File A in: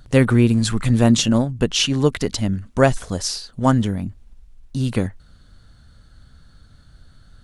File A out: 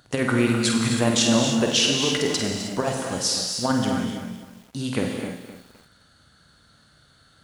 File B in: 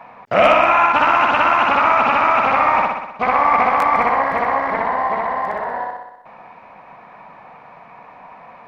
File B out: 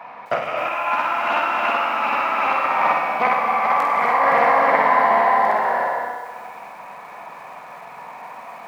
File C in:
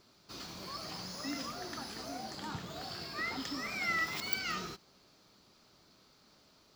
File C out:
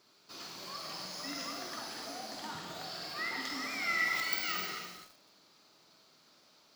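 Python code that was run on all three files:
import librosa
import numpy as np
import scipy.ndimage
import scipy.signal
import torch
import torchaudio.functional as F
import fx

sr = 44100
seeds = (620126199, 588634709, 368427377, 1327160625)

p1 = scipy.signal.sosfilt(scipy.signal.butter(2, 94.0, 'highpass', fs=sr, output='sos'), x)
p2 = fx.low_shelf(p1, sr, hz=280.0, db=-10.5)
p3 = fx.over_compress(p2, sr, threshold_db=-19.0, ratio=-0.5)
p4 = p3 + fx.room_flutter(p3, sr, wall_m=8.5, rt60_s=0.41, dry=0)
p5 = fx.rev_gated(p4, sr, seeds[0], gate_ms=340, shape='flat', drr_db=2.5)
p6 = fx.echo_crushed(p5, sr, ms=258, feedback_pct=35, bits=7, wet_db=-11)
y = p6 * librosa.db_to_amplitude(-1.0)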